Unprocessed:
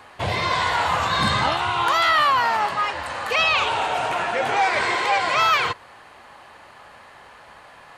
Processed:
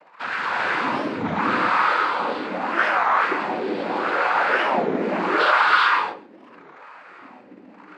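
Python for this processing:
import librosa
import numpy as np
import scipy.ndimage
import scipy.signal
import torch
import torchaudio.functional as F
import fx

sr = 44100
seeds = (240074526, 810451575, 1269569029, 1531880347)

p1 = scipy.signal.sosfilt(scipy.signal.butter(2, 170.0, 'highpass', fs=sr, output='sos'), x)
p2 = fx.peak_eq(p1, sr, hz=880.0, db=-14.0, octaves=0.53)
p3 = fx.hum_notches(p2, sr, base_hz=60, count=8)
p4 = fx.small_body(p3, sr, hz=(220.0, 1600.0, 3300.0), ring_ms=30, db=13)
p5 = fx.fuzz(p4, sr, gain_db=36.0, gate_db=-42.0)
p6 = p4 + (p5 * 10.0 ** (-10.5 / 20.0))
p7 = fx.noise_vocoder(p6, sr, seeds[0], bands=8)
p8 = fx.wah_lfo(p7, sr, hz=0.78, low_hz=240.0, high_hz=1400.0, q=3.5)
p9 = p8 + 10.0 ** (-21.5 / 20.0) * np.pad(p8, (int(140 * sr / 1000.0), 0))[:len(p8)]
p10 = fx.rev_gated(p9, sr, seeds[1], gate_ms=420, shape='rising', drr_db=-4.0)
p11 = fx.record_warp(p10, sr, rpm=33.33, depth_cents=250.0)
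y = p11 * 10.0 ** (2.5 / 20.0)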